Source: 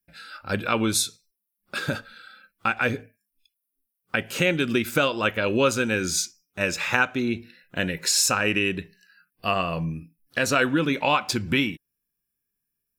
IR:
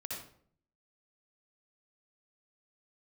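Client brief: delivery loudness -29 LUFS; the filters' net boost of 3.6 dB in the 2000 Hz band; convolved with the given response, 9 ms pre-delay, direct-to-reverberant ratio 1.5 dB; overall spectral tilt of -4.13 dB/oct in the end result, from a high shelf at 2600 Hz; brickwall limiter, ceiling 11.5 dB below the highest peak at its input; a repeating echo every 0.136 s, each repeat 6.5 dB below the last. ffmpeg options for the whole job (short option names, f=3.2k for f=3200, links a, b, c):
-filter_complex "[0:a]equalizer=f=2k:t=o:g=8.5,highshelf=f=2.6k:g=-7,alimiter=limit=-11.5dB:level=0:latency=1,aecho=1:1:136|272|408|544|680|816:0.473|0.222|0.105|0.0491|0.0231|0.0109,asplit=2[a][b];[1:a]atrim=start_sample=2205,adelay=9[c];[b][c]afir=irnorm=-1:irlink=0,volume=-1.5dB[d];[a][d]amix=inputs=2:normalize=0,volume=-7dB"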